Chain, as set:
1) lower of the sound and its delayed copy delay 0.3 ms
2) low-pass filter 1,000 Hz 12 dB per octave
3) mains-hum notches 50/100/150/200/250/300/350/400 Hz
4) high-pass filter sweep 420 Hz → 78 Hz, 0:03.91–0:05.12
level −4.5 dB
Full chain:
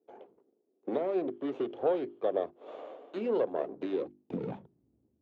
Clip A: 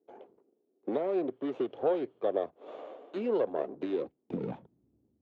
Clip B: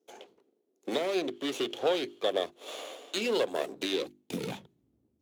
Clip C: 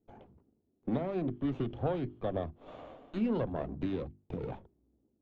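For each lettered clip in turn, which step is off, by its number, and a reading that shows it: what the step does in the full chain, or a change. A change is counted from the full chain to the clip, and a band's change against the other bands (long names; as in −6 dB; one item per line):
3, change in momentary loudness spread −1 LU
2, change in momentary loudness spread −2 LU
4, 125 Hz band +13.0 dB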